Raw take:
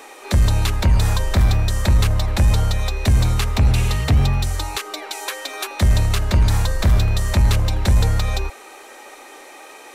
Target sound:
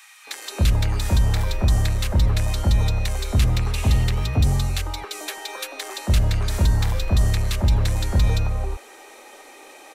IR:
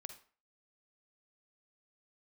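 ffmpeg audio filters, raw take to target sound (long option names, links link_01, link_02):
-filter_complex "[0:a]acrossover=split=1300[link_01][link_02];[link_01]adelay=270[link_03];[link_03][link_02]amix=inputs=2:normalize=0,volume=-3dB"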